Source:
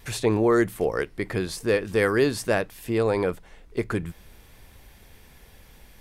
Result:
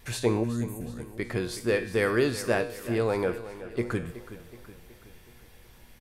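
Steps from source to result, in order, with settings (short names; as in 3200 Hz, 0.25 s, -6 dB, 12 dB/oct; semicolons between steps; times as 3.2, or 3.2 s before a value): spectral gain 0.43–1.09, 280–6200 Hz -20 dB; resonator 120 Hz, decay 0.61 s, harmonics all, mix 70%; on a send: feedback echo 0.372 s, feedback 52%, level -14.5 dB; on the sum: gain +5.5 dB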